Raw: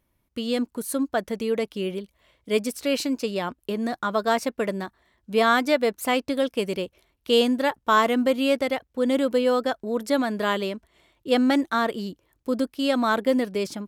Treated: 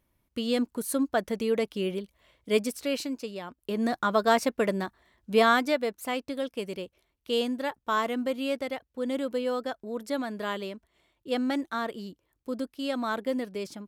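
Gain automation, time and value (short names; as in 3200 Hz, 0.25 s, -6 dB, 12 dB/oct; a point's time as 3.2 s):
2.56 s -1.5 dB
3.48 s -11.5 dB
3.81 s 0 dB
5.35 s 0 dB
5.94 s -8 dB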